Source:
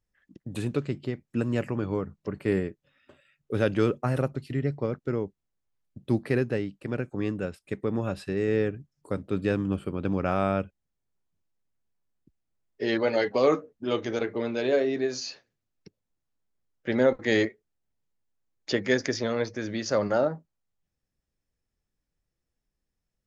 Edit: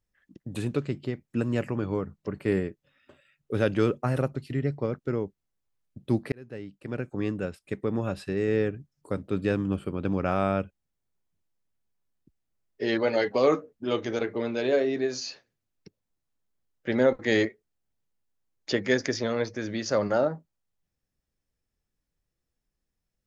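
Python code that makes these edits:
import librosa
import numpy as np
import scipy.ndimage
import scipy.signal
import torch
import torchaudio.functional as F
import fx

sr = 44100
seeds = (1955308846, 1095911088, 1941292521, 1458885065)

y = fx.edit(x, sr, fx.fade_in_span(start_s=6.32, length_s=0.82), tone=tone)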